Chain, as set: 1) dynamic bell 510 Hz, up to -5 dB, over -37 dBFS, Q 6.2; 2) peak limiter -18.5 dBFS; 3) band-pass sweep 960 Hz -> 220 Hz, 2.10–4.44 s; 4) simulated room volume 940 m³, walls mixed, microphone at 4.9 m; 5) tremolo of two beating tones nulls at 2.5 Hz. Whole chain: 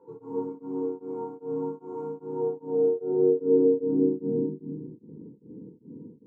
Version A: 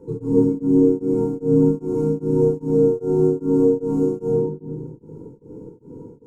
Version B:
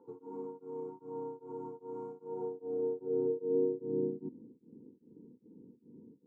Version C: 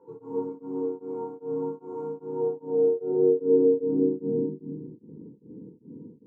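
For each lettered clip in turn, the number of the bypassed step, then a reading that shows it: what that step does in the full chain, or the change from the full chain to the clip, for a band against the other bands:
3, 125 Hz band +10.5 dB; 4, 1 kHz band +4.0 dB; 1, 500 Hz band +1.5 dB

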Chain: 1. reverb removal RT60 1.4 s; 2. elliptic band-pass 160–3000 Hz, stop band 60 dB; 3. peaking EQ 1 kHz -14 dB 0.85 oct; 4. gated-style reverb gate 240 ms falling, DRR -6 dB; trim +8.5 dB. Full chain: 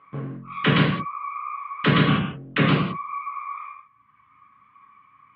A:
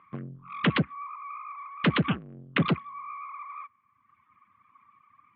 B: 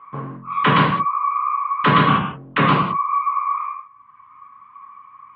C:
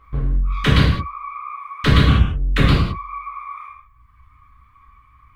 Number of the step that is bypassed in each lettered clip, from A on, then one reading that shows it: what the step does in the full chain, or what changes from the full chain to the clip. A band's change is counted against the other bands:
4, crest factor change +4.0 dB; 3, 1 kHz band +10.5 dB; 2, 125 Hz band +6.0 dB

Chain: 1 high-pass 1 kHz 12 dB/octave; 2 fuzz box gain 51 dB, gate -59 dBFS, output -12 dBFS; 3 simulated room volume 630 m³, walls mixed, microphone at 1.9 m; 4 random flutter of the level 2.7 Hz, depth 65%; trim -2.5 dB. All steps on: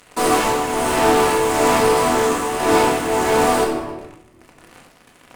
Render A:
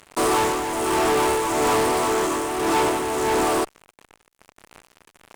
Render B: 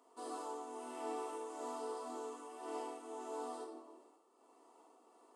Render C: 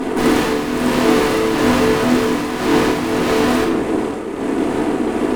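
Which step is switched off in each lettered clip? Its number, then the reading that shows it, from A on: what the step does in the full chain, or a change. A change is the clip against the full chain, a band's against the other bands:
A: 3, crest factor change -8.0 dB; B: 2, distortion -6 dB; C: 1, 250 Hz band +7.0 dB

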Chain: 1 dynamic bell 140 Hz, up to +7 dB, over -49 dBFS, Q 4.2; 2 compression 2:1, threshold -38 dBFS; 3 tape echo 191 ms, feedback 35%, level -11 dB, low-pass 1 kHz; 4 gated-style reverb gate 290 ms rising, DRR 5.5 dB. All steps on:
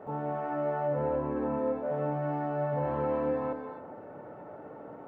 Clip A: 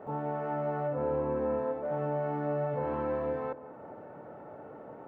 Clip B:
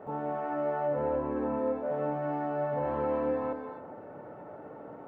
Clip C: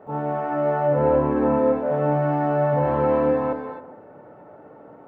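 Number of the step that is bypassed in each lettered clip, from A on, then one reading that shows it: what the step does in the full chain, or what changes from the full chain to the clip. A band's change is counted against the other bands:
4, loudness change -1.0 LU; 1, 125 Hz band -5.5 dB; 2, mean gain reduction 7.0 dB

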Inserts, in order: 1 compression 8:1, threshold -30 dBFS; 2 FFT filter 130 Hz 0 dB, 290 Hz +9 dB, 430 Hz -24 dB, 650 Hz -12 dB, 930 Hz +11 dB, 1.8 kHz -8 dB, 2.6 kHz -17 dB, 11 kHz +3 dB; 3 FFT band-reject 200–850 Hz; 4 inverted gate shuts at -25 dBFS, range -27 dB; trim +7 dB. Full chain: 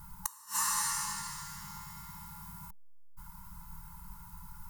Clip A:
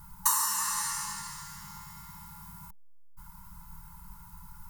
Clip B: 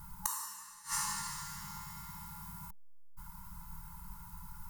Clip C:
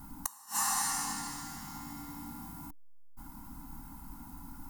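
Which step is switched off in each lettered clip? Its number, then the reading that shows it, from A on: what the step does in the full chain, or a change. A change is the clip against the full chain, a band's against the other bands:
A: 4, 125 Hz band -2.5 dB; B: 1, crest factor change +2.5 dB; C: 3, 250 Hz band +9.0 dB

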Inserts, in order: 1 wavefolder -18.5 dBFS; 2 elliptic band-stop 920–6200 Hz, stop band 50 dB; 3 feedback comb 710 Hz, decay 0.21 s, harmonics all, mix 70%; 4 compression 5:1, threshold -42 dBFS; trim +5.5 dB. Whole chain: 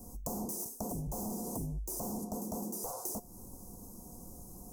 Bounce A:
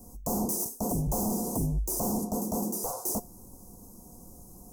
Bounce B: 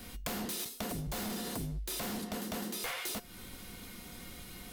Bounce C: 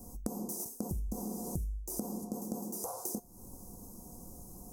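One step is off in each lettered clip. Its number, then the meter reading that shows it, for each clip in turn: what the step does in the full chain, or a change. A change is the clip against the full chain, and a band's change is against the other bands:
4, crest factor change -1.5 dB; 2, 4 kHz band +15.5 dB; 1, crest factor change +8.0 dB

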